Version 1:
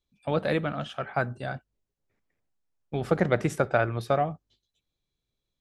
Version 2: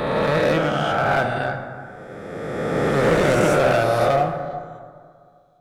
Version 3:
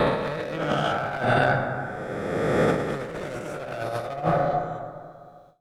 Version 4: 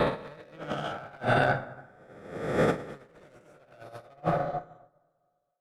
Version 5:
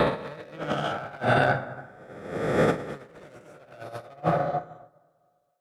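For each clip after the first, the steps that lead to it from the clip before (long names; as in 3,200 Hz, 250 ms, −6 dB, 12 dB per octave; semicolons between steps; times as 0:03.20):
peak hold with a rise ahead of every peak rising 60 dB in 2.38 s; hard clipping −19 dBFS, distortion −10 dB; dense smooth reverb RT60 2.1 s, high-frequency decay 0.4×, DRR 4.5 dB; level +4 dB
noise gate with hold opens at −47 dBFS; compressor whose output falls as the input rises −24 dBFS, ratio −0.5
delay with a band-pass on its return 241 ms, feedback 60%, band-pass 810 Hz, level −19 dB; expander for the loud parts 2.5 to 1, over −38 dBFS; level −1.5 dB
in parallel at +1.5 dB: downward compressor, threshold −32 dBFS, peak gain reduction 12 dB; on the sum: high-pass filter 53 Hz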